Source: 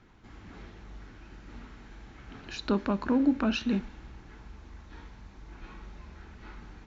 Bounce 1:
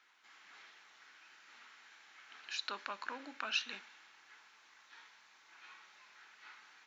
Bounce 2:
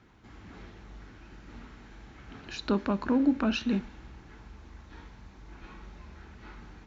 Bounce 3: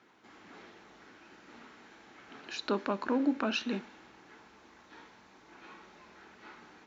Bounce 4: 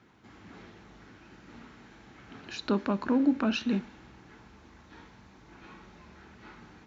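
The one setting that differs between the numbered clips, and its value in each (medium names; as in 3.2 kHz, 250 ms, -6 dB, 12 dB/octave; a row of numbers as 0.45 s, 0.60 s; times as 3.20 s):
high-pass, cutoff frequency: 1.5 kHz, 40 Hz, 330 Hz, 120 Hz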